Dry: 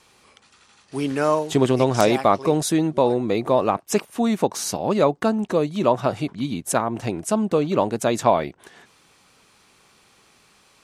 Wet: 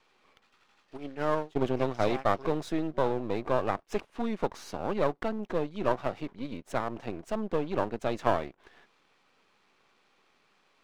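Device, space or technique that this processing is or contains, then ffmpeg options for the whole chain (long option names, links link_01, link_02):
crystal radio: -filter_complex "[0:a]highpass=230,lowpass=3300,aeval=exprs='if(lt(val(0),0),0.251*val(0),val(0))':channel_layout=same,asplit=3[link_01][link_02][link_03];[link_01]afade=type=out:start_time=0.96:duration=0.02[link_04];[link_02]agate=range=-33dB:threshold=-21dB:ratio=3:detection=peak,afade=type=in:start_time=0.96:duration=0.02,afade=type=out:start_time=2.3:duration=0.02[link_05];[link_03]afade=type=in:start_time=2.3:duration=0.02[link_06];[link_04][link_05][link_06]amix=inputs=3:normalize=0,volume=-5.5dB"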